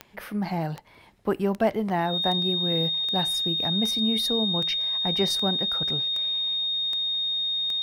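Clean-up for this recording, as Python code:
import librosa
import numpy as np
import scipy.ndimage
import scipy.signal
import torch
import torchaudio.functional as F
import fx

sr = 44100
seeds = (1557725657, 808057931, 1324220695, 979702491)

y = fx.fix_declick_ar(x, sr, threshold=10.0)
y = fx.notch(y, sr, hz=3700.0, q=30.0)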